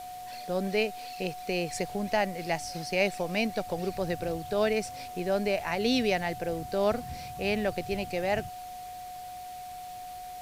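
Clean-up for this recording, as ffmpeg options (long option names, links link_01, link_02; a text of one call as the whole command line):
ffmpeg -i in.wav -af "bandreject=frequency=730:width=30,afwtdn=0.0025" out.wav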